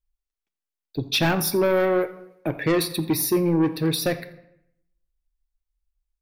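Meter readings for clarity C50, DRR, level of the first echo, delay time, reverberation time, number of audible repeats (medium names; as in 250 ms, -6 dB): 13.5 dB, 9.5 dB, -19.5 dB, 85 ms, 0.80 s, 1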